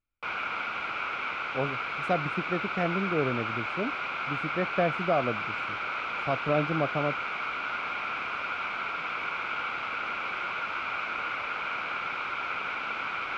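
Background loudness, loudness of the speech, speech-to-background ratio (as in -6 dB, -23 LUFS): -31.5 LUFS, -31.5 LUFS, 0.0 dB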